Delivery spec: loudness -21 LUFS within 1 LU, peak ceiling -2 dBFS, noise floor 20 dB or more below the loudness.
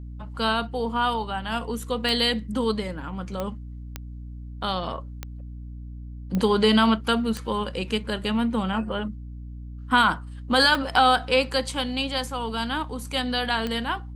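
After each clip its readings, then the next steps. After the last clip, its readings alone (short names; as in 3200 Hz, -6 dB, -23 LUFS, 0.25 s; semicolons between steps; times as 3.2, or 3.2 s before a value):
clicks 8; hum 60 Hz; harmonics up to 300 Hz; hum level -35 dBFS; loudness -24.5 LUFS; peak -6.5 dBFS; loudness target -21.0 LUFS
-> de-click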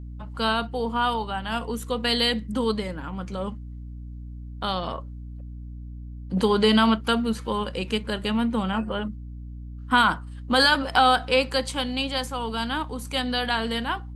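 clicks 0; hum 60 Hz; harmonics up to 300 Hz; hum level -35 dBFS
-> de-hum 60 Hz, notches 5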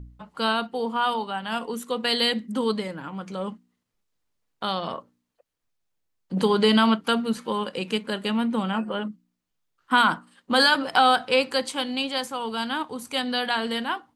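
hum none; loudness -24.5 LUFS; peak -7.0 dBFS; loudness target -21.0 LUFS
-> gain +3.5 dB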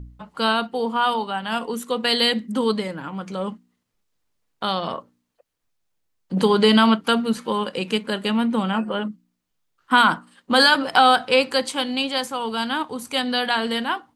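loudness -21.0 LUFS; peak -3.5 dBFS; noise floor -74 dBFS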